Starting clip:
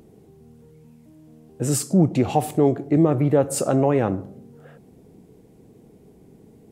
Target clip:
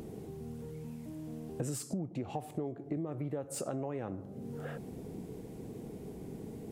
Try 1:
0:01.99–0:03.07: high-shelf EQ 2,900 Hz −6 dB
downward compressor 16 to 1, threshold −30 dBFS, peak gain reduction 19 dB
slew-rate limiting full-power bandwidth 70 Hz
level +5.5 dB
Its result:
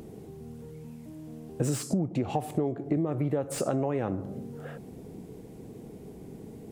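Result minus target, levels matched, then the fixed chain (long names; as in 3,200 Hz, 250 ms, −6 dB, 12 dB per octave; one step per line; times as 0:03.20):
downward compressor: peak gain reduction −9 dB
0:01.99–0:03.07: high-shelf EQ 2,900 Hz −6 dB
downward compressor 16 to 1, threshold −39.5 dBFS, peak gain reduction 27.5 dB
slew-rate limiting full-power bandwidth 70 Hz
level +5.5 dB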